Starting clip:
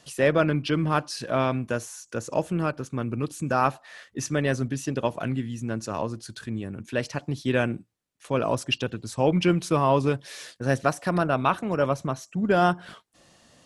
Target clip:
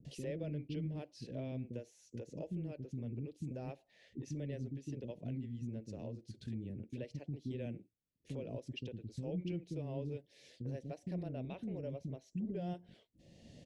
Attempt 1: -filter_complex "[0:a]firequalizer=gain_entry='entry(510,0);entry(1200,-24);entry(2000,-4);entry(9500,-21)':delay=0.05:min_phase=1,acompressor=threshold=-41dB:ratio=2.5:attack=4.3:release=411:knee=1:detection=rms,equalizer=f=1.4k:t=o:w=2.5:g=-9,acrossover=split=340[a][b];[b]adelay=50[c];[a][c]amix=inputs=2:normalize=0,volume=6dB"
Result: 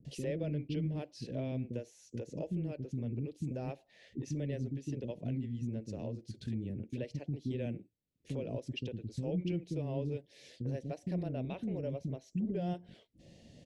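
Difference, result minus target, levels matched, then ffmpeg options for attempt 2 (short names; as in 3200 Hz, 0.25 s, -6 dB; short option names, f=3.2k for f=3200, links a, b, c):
compressor: peak gain reduction -5 dB
-filter_complex "[0:a]firequalizer=gain_entry='entry(510,0);entry(1200,-24);entry(2000,-4);entry(9500,-21)':delay=0.05:min_phase=1,acompressor=threshold=-49dB:ratio=2.5:attack=4.3:release=411:knee=1:detection=rms,equalizer=f=1.4k:t=o:w=2.5:g=-9,acrossover=split=340[a][b];[b]adelay=50[c];[a][c]amix=inputs=2:normalize=0,volume=6dB"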